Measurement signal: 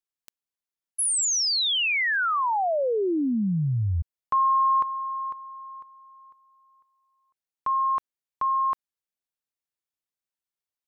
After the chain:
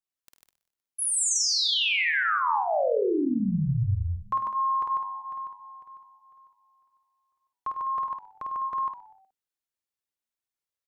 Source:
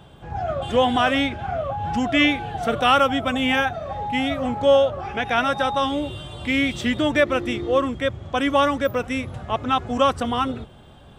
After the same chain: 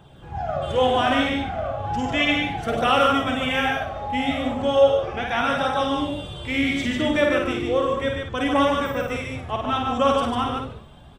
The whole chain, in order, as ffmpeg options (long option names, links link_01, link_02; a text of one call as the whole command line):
ffmpeg -i in.wav -filter_complex "[0:a]asplit=2[link_01][link_02];[link_02]aecho=0:1:51|78|100|147|204:0.668|0.15|0.316|0.668|0.299[link_03];[link_01][link_03]amix=inputs=2:normalize=0,flanger=delay=0.1:depth=3.8:regen=-55:speed=0.35:shape=triangular,asplit=2[link_04][link_05];[link_05]asplit=3[link_06][link_07][link_08];[link_06]adelay=123,afreqshift=-100,volume=-19dB[link_09];[link_07]adelay=246,afreqshift=-200,volume=-26.1dB[link_10];[link_08]adelay=369,afreqshift=-300,volume=-33.3dB[link_11];[link_09][link_10][link_11]amix=inputs=3:normalize=0[link_12];[link_04][link_12]amix=inputs=2:normalize=0" out.wav